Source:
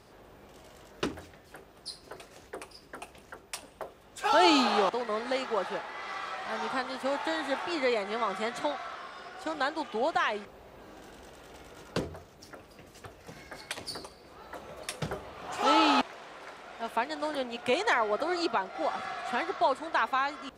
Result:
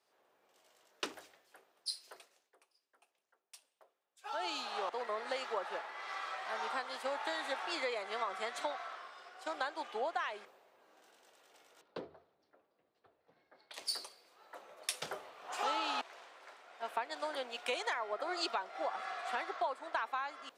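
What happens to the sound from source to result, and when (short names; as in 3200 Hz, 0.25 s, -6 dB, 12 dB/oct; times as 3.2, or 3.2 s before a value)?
2.13–5.01 dip -11.5 dB, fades 0.42 s quadratic
11.81–13.74 EQ curve 250 Hz 0 dB, 670 Hz -4 dB, 2800 Hz -11 dB, 4100 Hz -7 dB, 6700 Hz -25 dB
whole clip: HPF 500 Hz 12 dB/oct; compressor 8:1, threshold -32 dBFS; three-band expander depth 70%; gain -2 dB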